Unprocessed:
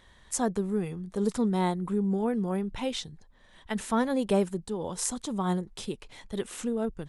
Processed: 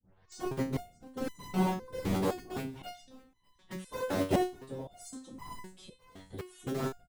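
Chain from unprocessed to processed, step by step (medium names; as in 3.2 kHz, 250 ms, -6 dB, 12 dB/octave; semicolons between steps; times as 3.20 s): tape start-up on the opening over 0.43 s; harmonic-percussive split percussive -8 dB; in parallel at -4.5 dB: bit crusher 4-bit; on the sum: whisper effect; on a send: feedback delay 605 ms, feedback 22%, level -21 dB; on the sum: resonator arpeggio 3.9 Hz 95–1000 Hz; trim +4 dB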